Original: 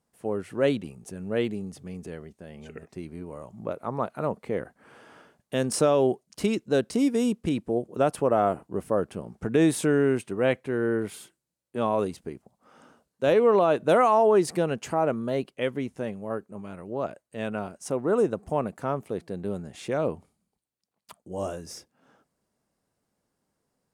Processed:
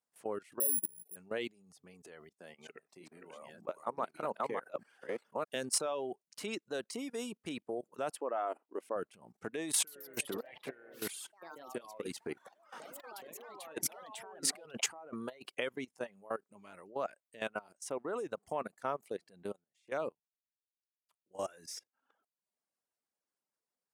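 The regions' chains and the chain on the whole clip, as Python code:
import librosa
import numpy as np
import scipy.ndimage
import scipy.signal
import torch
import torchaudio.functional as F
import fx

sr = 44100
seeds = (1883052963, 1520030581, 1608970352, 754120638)

y = fx.chain(x, sr, fx.cheby2_lowpass(hz=1100.0, order=4, stop_db=40),
    fx.resample_bad(factor=4, down='none', up='zero_stuff'), at=(0.6, 1.16))
y = fx.chain(y, sr, fx.reverse_delay(ms=611, wet_db=-0.5),
    fx.highpass(hz=130.0, slope=12), at=(2.39, 5.56))
y = fx.chain(y, sr, fx.brickwall_highpass(low_hz=220.0),
    fx.high_shelf(hz=5800.0, db=-10.5), at=(8.16, 8.96))
y = fx.chain(y, sr, fx.notch(hz=610.0, q=16.0),
    fx.over_compress(threshold_db=-34.0, ratio=-1.0),
    fx.echo_pitch(ms=132, semitones=3, count=3, db_per_echo=-6.0), at=(9.74, 15.61))
y = fx.chain(y, sr, fx.hum_notches(base_hz=50, count=3),
    fx.upward_expand(threshold_db=-41.0, expansion=2.5), at=(19.53, 21.35))
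y = fx.level_steps(y, sr, step_db=15)
y = fx.dereverb_blind(y, sr, rt60_s=0.73)
y = fx.highpass(y, sr, hz=870.0, slope=6)
y = y * 10.0 ** (1.0 / 20.0)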